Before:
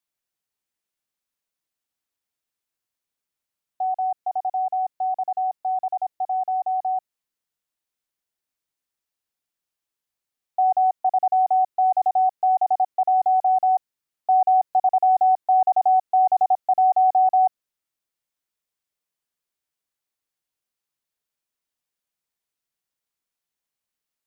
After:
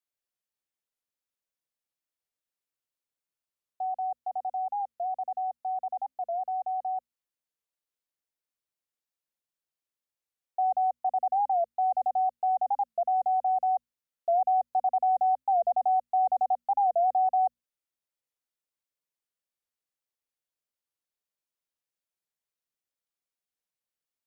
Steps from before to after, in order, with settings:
parametric band 530 Hz +5 dB 0.3 octaves
mains-hum notches 60/120/180/240 Hz
wow of a warped record 45 rpm, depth 160 cents
level −7.5 dB

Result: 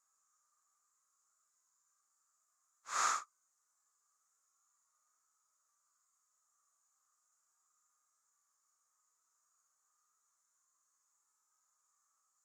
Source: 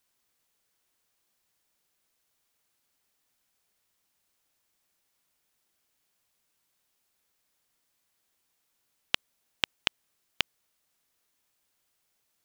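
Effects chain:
pair of resonant band-passes 2,900 Hz, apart 2.5 octaves
extreme stretch with random phases 8.3×, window 0.05 s, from 0:10.04
level +8.5 dB

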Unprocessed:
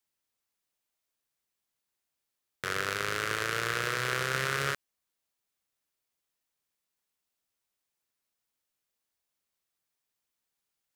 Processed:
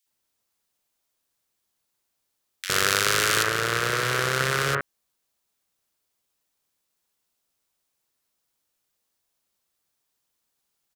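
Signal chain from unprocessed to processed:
0:02.69–0:03.43: high-shelf EQ 2,300 Hz +9.5 dB
multiband delay without the direct sound highs, lows 60 ms, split 2,100 Hz
level +7.5 dB

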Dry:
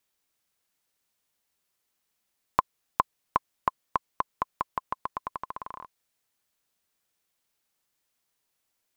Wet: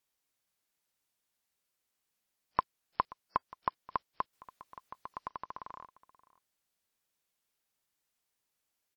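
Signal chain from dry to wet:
0:04.33–0:05.29: compressor whose output falls as the input rises −35 dBFS, ratio −0.5
single-tap delay 530 ms −20.5 dB
level −6 dB
WMA 64 kbit/s 44,100 Hz

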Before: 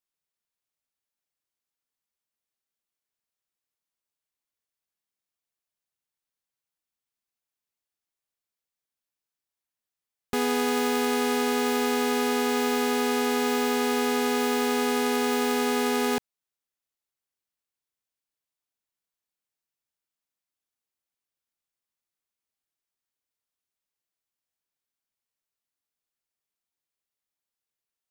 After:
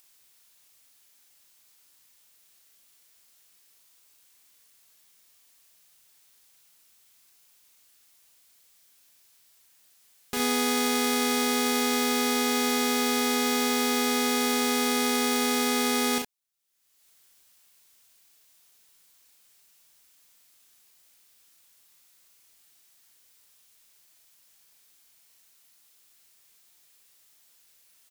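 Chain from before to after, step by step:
high-shelf EQ 2,000 Hz +10 dB
upward compression, threshold −37 dBFS
on a send: ambience of single reflections 37 ms −3.5 dB, 65 ms −6 dB
on the sum: level −6.5 dB

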